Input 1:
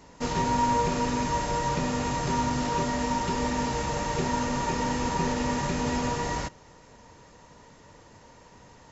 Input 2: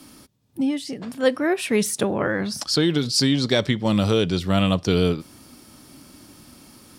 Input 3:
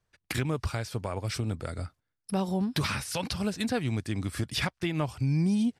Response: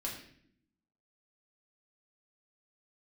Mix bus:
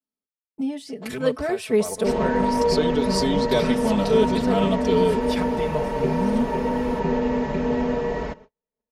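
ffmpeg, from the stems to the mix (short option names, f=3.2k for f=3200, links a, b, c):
-filter_complex "[0:a]lowpass=2.4k,equalizer=f=950:w=0.81:g=-3.5,adelay=1850,volume=-1dB[a];[1:a]volume=-10dB[b];[2:a]adelay=750,volume=-6.5dB[c];[a][b][c]amix=inputs=3:normalize=0,agate=range=-44dB:threshold=-48dB:ratio=16:detection=peak,equalizer=f=520:t=o:w=1.4:g=8.5,aecho=1:1:4.6:0.98"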